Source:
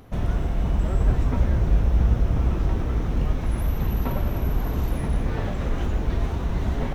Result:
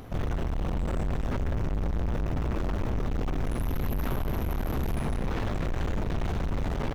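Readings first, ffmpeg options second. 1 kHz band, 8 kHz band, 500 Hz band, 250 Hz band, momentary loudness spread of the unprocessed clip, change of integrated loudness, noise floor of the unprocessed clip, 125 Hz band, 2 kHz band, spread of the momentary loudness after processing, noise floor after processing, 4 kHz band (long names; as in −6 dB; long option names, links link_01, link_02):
−2.0 dB, −1.5 dB, −2.5 dB, −3.5 dB, 5 LU, −6.5 dB, −28 dBFS, −7.0 dB, −1.5 dB, 1 LU, −32 dBFS, −1.5 dB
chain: -filter_complex "[0:a]asplit=2[link_01][link_02];[link_02]adelay=472,lowpass=frequency=2000:poles=1,volume=-9dB,asplit=2[link_03][link_04];[link_04]adelay=472,lowpass=frequency=2000:poles=1,volume=0.34,asplit=2[link_05][link_06];[link_06]adelay=472,lowpass=frequency=2000:poles=1,volume=0.34,asplit=2[link_07][link_08];[link_08]adelay=472,lowpass=frequency=2000:poles=1,volume=0.34[link_09];[link_01][link_03][link_05][link_07][link_09]amix=inputs=5:normalize=0,aeval=exprs='(tanh(44.7*val(0)+0.55)-tanh(0.55))/44.7':channel_layout=same,volume=6dB"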